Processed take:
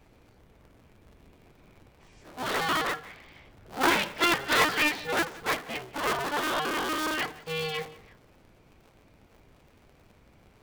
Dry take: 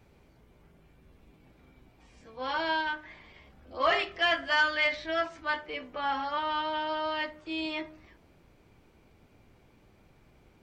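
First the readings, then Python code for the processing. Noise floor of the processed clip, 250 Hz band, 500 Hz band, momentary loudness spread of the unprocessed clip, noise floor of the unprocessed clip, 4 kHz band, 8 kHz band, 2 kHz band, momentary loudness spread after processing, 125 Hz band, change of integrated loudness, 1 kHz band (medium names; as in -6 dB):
-60 dBFS, +5.5 dB, +1.0 dB, 12 LU, -62 dBFS, +2.5 dB, no reading, +1.5 dB, 13 LU, +11.5 dB, +2.5 dB, +1.5 dB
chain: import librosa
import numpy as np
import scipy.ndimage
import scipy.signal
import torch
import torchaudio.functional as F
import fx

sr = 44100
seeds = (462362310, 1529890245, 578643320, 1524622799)

p1 = fx.cycle_switch(x, sr, every=2, mode='inverted')
p2 = p1 + fx.echo_single(p1, sr, ms=177, db=-21.0, dry=0)
y = F.gain(torch.from_numpy(p2), 2.0).numpy()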